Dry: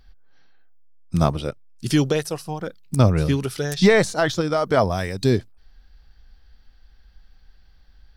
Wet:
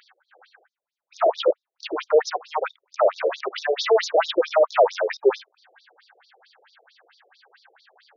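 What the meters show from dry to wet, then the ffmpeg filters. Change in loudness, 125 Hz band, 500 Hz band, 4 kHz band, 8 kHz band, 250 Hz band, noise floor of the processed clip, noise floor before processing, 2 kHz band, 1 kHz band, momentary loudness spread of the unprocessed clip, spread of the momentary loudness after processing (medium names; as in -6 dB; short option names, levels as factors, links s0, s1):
-1.0 dB, under -40 dB, +2.5 dB, -0.5 dB, -7.5 dB, -14.5 dB, under -85 dBFS, -53 dBFS, -3.5 dB, +3.0 dB, 13 LU, 11 LU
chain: -filter_complex "[0:a]asplit=2[s0][s1];[s1]highpass=f=720:p=1,volume=35.5,asoftclip=type=tanh:threshold=0.631[s2];[s0][s2]amix=inputs=2:normalize=0,lowpass=f=1100:p=1,volume=0.501,acrossover=split=7600[s3][s4];[s4]acompressor=threshold=0.00708:ratio=4:attack=1:release=60[s5];[s3][s5]amix=inputs=2:normalize=0,afftfilt=real='re*between(b*sr/1024,470*pow(5100/470,0.5+0.5*sin(2*PI*4.5*pts/sr))/1.41,470*pow(5100/470,0.5+0.5*sin(2*PI*4.5*pts/sr))*1.41)':imag='im*between(b*sr/1024,470*pow(5100/470,0.5+0.5*sin(2*PI*4.5*pts/sr))/1.41,470*pow(5100/470,0.5+0.5*sin(2*PI*4.5*pts/sr))*1.41)':win_size=1024:overlap=0.75"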